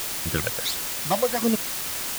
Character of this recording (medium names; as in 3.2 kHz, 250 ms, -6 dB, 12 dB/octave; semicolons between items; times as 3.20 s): phasing stages 12, 1.4 Hz, lowest notch 290–1600 Hz; a quantiser's noise floor 6-bit, dither triangular